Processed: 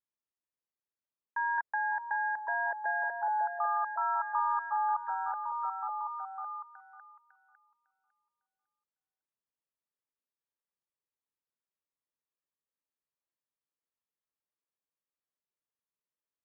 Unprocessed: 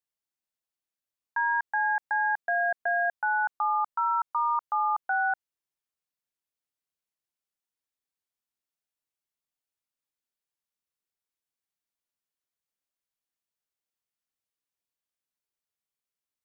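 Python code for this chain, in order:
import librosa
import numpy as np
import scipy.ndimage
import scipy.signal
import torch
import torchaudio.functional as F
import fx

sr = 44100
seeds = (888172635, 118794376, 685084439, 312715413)

y = scipy.signal.sosfilt(scipy.signal.butter(2, 1800.0, 'lowpass', fs=sr, output='sos'), x)
y = fx.notch_comb(y, sr, f0_hz=740.0)
y = fx.echo_stepped(y, sr, ms=553, hz=540.0, octaves=0.7, feedback_pct=70, wet_db=-1.0)
y = fx.band_squash(y, sr, depth_pct=70, at=(1.58, 2.39))
y = F.gain(torch.from_numpy(y), -3.5).numpy()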